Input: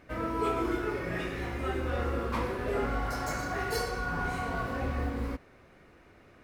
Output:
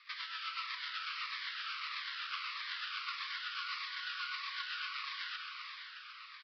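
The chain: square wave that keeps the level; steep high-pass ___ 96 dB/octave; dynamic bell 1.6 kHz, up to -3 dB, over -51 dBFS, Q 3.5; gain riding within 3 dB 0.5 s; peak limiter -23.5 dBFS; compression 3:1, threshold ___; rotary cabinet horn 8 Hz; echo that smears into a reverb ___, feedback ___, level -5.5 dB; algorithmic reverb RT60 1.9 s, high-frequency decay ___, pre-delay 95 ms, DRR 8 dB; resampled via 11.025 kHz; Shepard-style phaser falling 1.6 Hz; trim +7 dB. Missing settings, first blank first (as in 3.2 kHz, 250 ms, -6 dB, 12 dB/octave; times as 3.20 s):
1.1 kHz, -43 dBFS, 476 ms, 44%, 1×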